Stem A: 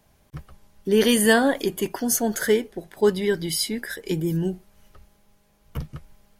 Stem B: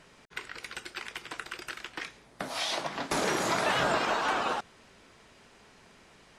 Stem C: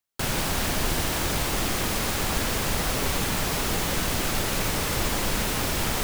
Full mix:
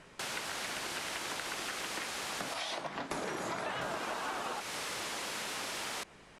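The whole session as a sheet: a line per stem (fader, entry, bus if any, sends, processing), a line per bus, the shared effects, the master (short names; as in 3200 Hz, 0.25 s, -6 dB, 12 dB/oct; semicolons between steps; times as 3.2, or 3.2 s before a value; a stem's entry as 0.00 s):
off
+1.5 dB, 0.00 s, bus A, no send, bell 5000 Hz -4 dB 1.5 oct
-7.0 dB, 0.00 s, muted 2.54–3.81, bus A, no send, weighting filter A
bus A: 0.0 dB, compressor 6:1, threshold -35 dBFS, peak gain reduction 12.5 dB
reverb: off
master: LPF 12000 Hz 24 dB/oct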